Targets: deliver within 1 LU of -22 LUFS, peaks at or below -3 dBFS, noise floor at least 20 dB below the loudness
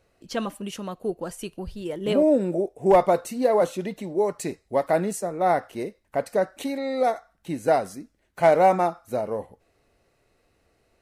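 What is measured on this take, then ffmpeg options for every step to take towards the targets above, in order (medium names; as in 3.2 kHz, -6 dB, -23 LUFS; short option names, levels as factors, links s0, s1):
loudness -24.5 LUFS; peak level -8.5 dBFS; loudness target -22.0 LUFS
-> -af "volume=1.33"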